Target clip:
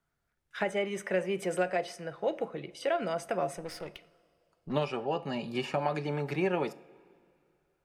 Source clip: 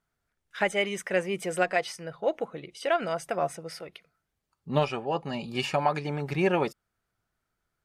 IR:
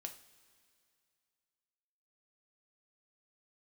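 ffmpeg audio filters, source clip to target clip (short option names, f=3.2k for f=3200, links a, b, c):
-filter_complex "[0:a]acrossover=split=170|640|1600[a][b][c][d];[a]acompressor=threshold=-50dB:ratio=4[e];[b]acompressor=threshold=-29dB:ratio=4[f];[c]acompressor=threshold=-38dB:ratio=4[g];[d]acompressor=threshold=-39dB:ratio=4[h];[e][f][g][h]amix=inputs=4:normalize=0,asettb=1/sr,asplit=3[i][j][k];[i]atrim=end=3.574[l];[j]atrim=start=3.57:end=4.73,asetpts=PTS-STARTPTS,afade=t=in:d=0.004:c=qsin,afade=t=out:st=1.156:d=0.004:c=qsin,aeval=exprs='0.0447*(cos(1*acos(clip(val(0)/0.0447,-1,1)))-cos(1*PI/2))+0.00398*(cos(8*acos(clip(val(0)/0.0447,-1,1)))-cos(8*PI/2))':c=same[m];[k]atrim=start=4.726[n];[l][m]acrossfade=d=0.004:c1=hsin:c2=qsin[o];[o][n]acrossfade=d=0.004:c1=qsin:c2=hsin,asplit=2[p][q];[1:a]atrim=start_sample=2205,highshelf=f=4.1k:g=-11[r];[q][r]afir=irnorm=-1:irlink=0,volume=3.5dB[s];[p][s]amix=inputs=2:normalize=0,volume=-5dB"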